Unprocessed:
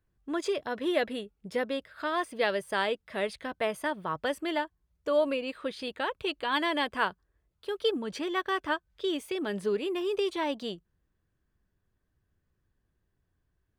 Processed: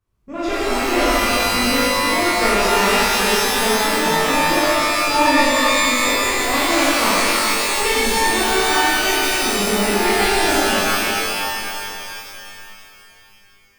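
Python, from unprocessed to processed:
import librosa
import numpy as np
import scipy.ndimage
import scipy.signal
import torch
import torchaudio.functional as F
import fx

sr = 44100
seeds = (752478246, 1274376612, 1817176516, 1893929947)

y = fx.cheby_harmonics(x, sr, harmonics=(4,), levels_db=(-10,), full_scale_db=-13.5)
y = fx.formant_shift(y, sr, semitones=-5)
y = fx.rev_shimmer(y, sr, seeds[0], rt60_s=2.9, semitones=12, shimmer_db=-2, drr_db=-11.0)
y = y * 10.0 ** (-1.5 / 20.0)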